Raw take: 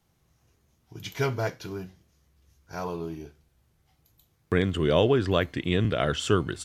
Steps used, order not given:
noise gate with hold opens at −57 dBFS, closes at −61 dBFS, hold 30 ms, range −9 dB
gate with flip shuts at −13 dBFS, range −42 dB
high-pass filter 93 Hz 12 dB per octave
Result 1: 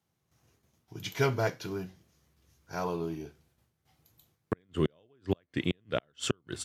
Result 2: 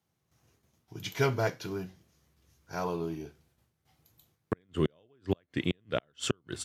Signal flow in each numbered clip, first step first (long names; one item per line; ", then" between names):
gate with flip, then noise gate with hold, then high-pass filter
noise gate with hold, then gate with flip, then high-pass filter